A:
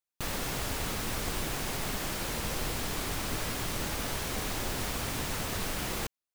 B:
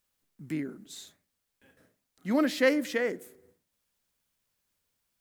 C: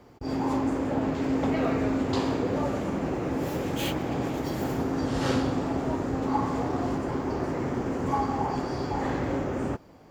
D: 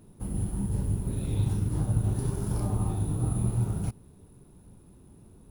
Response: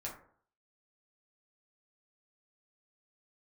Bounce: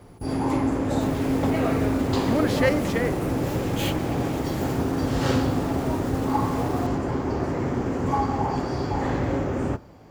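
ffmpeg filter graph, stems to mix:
-filter_complex "[0:a]alimiter=level_in=4.5dB:limit=-24dB:level=0:latency=1,volume=-4.5dB,adelay=800,volume=-5.5dB[link_01];[1:a]volume=1.5dB[link_02];[2:a]equalizer=frequency=69:width=0.72:gain=5.5,volume=1.5dB,asplit=2[link_03][link_04];[link_04]volume=-14dB[link_05];[3:a]acompressor=threshold=-36dB:ratio=6,asplit=2[link_06][link_07];[link_07]adelay=7.5,afreqshift=-0.79[link_08];[link_06][link_08]amix=inputs=2:normalize=1,volume=3dB[link_09];[4:a]atrim=start_sample=2205[link_10];[link_05][link_10]afir=irnorm=-1:irlink=0[link_11];[link_01][link_02][link_03][link_09][link_11]amix=inputs=5:normalize=0"

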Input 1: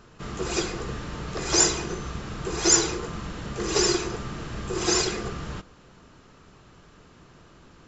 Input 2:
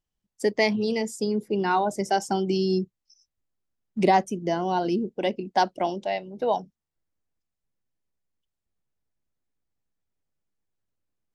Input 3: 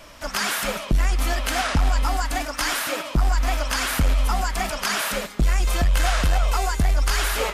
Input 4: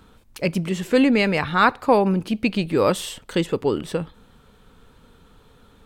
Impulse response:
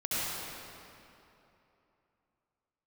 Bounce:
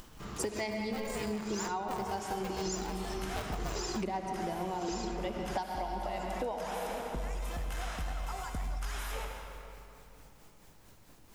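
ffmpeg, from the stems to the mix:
-filter_complex "[0:a]volume=-8.5dB[link_01];[1:a]acompressor=mode=upward:threshold=-27dB:ratio=2.5,tremolo=f=4.5:d=0.59,volume=-1dB,asplit=2[link_02][link_03];[link_03]volume=-10dB[link_04];[2:a]bandreject=frequency=4500:width=10,adelay=1750,volume=-18.5dB,asplit=2[link_05][link_06];[link_06]volume=-10.5dB[link_07];[3:a]aeval=exprs='val(0)*sgn(sin(2*PI*270*n/s))':channel_layout=same,volume=-15dB,asplit=2[link_08][link_09];[link_09]volume=-22dB[link_10];[4:a]atrim=start_sample=2205[link_11];[link_04][link_07][link_10]amix=inputs=3:normalize=0[link_12];[link_12][link_11]afir=irnorm=-1:irlink=0[link_13];[link_01][link_02][link_05][link_08][link_13]amix=inputs=5:normalize=0,equalizer=frequency=930:width_type=o:width=0.41:gain=4.5,acompressor=threshold=-32dB:ratio=12"

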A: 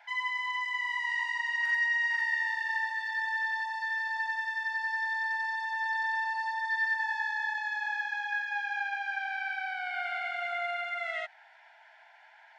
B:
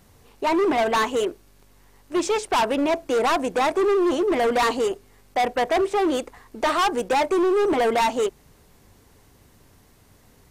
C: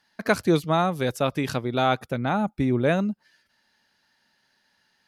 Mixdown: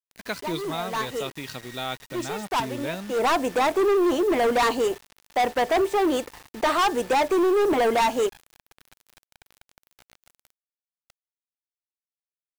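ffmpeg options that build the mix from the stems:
ffmpeg -i stem1.wav -i stem2.wav -i stem3.wav -filter_complex "[0:a]aeval=exprs='clip(val(0),-1,0.0178)':channel_layout=same,volume=-18dB[link_01];[1:a]volume=-0.5dB[link_02];[2:a]equalizer=frequency=3700:width_type=o:width=1.8:gain=10.5,volume=-12dB,asplit=2[link_03][link_04];[link_04]apad=whole_len=463329[link_05];[link_02][link_05]sidechaincompress=threshold=-41dB:ratio=6:attack=8.5:release=238[link_06];[link_01][link_06][link_03]amix=inputs=3:normalize=0,acrusher=bits=6:mix=0:aa=0.000001" out.wav

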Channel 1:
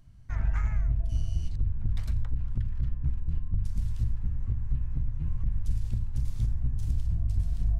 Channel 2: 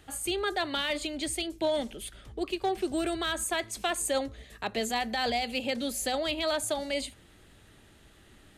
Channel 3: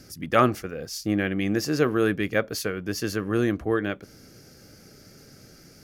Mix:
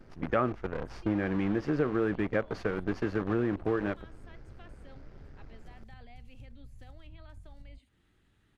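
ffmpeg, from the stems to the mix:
ffmpeg -i stem1.wav -i stem2.wav -i stem3.wav -filter_complex "[0:a]acompressor=threshold=-30dB:ratio=2,volume=-7.5dB[link_01];[1:a]highshelf=frequency=3900:gain=-11.5,acrossover=split=3200[link_02][link_03];[link_03]acompressor=threshold=-54dB:ratio=4:attack=1:release=60[link_04];[link_02][link_04]amix=inputs=2:normalize=0,equalizer=frequency=590:width=1.5:gain=-8,adelay=750,volume=-11dB[link_05];[2:a]acrusher=bits=6:dc=4:mix=0:aa=0.000001,lowpass=1600,volume=0dB[link_06];[link_01][link_05]amix=inputs=2:normalize=0,acompressor=threshold=-46dB:ratio=6,volume=0dB[link_07];[link_06][link_07]amix=inputs=2:normalize=0,acompressor=threshold=-26dB:ratio=3" out.wav

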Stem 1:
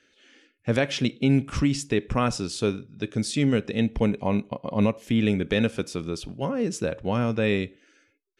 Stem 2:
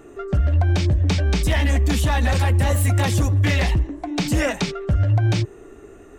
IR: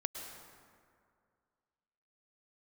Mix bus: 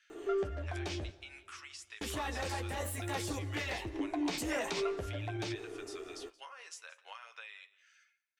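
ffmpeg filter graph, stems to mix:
-filter_complex "[0:a]highpass=frequency=1100:width=0.5412,highpass=frequency=1100:width=1.3066,alimiter=limit=-20.5dB:level=0:latency=1:release=498,acompressor=threshold=-41dB:ratio=12,volume=-1dB,asplit=2[link_01][link_02];[link_02]volume=-20dB[link_03];[1:a]bandreject=frequency=560:width=17,alimiter=limit=-22dB:level=0:latency=1:release=39,adelay=100,volume=-1.5dB,asplit=3[link_04][link_05][link_06];[link_04]atrim=end=1.1,asetpts=PTS-STARTPTS,afade=type=out:start_time=1.096:duration=0.004:curve=hsin[link_07];[link_05]atrim=start=1.1:end=2.01,asetpts=PTS-STARTPTS,volume=0[link_08];[link_06]atrim=start=2.01,asetpts=PTS-STARTPTS,afade=type=in:duration=0.004:curve=hsin[link_09];[link_07][link_08][link_09]concat=n=3:v=0:a=1,asplit=3[link_10][link_11][link_12];[link_11]volume=-13.5dB[link_13];[link_12]volume=-24dB[link_14];[2:a]atrim=start_sample=2205[link_15];[link_13][link_15]afir=irnorm=-1:irlink=0[link_16];[link_03][link_14]amix=inputs=2:normalize=0,aecho=0:1:176|352|528|704:1|0.25|0.0625|0.0156[link_17];[link_01][link_10][link_16][link_17]amix=inputs=4:normalize=0,lowshelf=frequency=250:width_type=q:width=1.5:gain=-11,flanger=delay=8.9:depth=3.6:regen=-34:speed=0.54:shape=sinusoidal"

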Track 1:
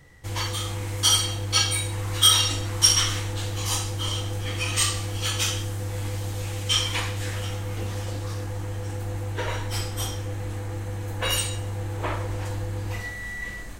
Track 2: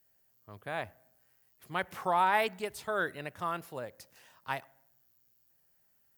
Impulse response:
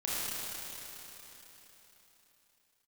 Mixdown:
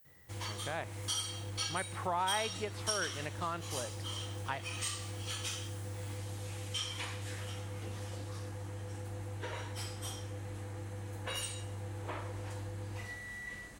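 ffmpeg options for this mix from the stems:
-filter_complex "[0:a]highpass=71,adelay=50,volume=-10dB[link_01];[1:a]acrossover=split=4800[link_02][link_03];[link_03]acompressor=threshold=-60dB:ratio=4:attack=1:release=60[link_04];[link_02][link_04]amix=inputs=2:normalize=0,volume=3dB[link_05];[link_01][link_05]amix=inputs=2:normalize=0,aexciter=amount=1.1:drive=1.3:freq=9300,acompressor=threshold=-38dB:ratio=2"

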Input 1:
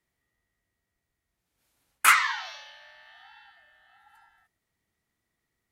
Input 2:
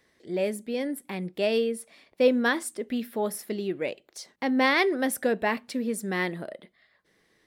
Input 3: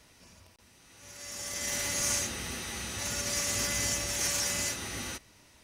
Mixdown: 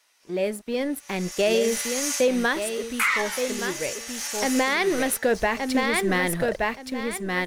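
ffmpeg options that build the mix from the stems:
ffmpeg -i stem1.wav -i stem2.wav -i stem3.wav -filter_complex "[0:a]equalizer=frequency=2200:width_type=o:width=0.31:gain=8,adelay=950,volume=3dB[link_01];[1:a]aeval=exprs='sgn(val(0))*max(abs(val(0))-0.00316,0)':channel_layout=same,asubboost=boost=10.5:cutoff=73,agate=range=-8dB:threshold=-46dB:ratio=16:detection=peak,volume=2dB,asplit=3[link_02][link_03][link_04];[link_03]volume=-7dB[link_05];[2:a]highpass=830,equalizer=frequency=13000:width=5.1:gain=3,volume=-3.5dB,asplit=2[link_06][link_07];[link_07]volume=-19dB[link_08];[link_04]apad=whole_len=293984[link_09];[link_01][link_09]sidechaincompress=threshold=-31dB:ratio=8:attack=44:release=201[link_10];[link_05][link_08]amix=inputs=2:normalize=0,aecho=0:1:1172|2344|3516:1|0.19|0.0361[link_11];[link_10][link_02][link_06][link_11]amix=inputs=4:normalize=0,dynaudnorm=framelen=420:gausssize=5:maxgain=8.5dB,alimiter=limit=-12.5dB:level=0:latency=1:release=108" out.wav

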